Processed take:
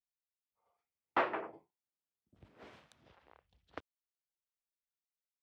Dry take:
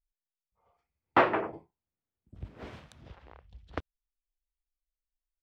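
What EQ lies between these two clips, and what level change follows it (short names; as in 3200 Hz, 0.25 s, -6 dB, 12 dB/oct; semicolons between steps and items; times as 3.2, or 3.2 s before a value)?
HPF 350 Hz 6 dB/oct; -8.0 dB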